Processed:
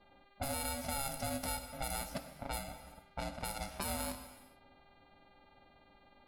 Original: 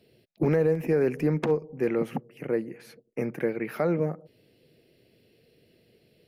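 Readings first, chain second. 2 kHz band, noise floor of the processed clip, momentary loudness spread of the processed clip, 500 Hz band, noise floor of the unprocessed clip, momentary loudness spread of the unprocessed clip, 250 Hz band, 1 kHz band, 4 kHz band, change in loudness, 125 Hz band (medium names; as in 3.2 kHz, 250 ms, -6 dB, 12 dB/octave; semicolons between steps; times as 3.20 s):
-6.5 dB, -65 dBFS, 11 LU, -19.5 dB, -65 dBFS, 12 LU, -17.0 dB, -1.5 dB, no reading, -12.5 dB, -15.0 dB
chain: bit-reversed sample order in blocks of 32 samples; level-controlled noise filter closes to 710 Hz, open at -22 dBFS; treble shelf 3.1 kHz +9 dB; peak limiter -16.5 dBFS, peak gain reduction 6.5 dB; compression 2:1, threshold -40 dBFS, peak gain reduction 9.5 dB; mains buzz 400 Hz, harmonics 10, -64 dBFS -4 dB/octave; ring modulator 410 Hz; gated-style reverb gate 460 ms falling, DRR 7.5 dB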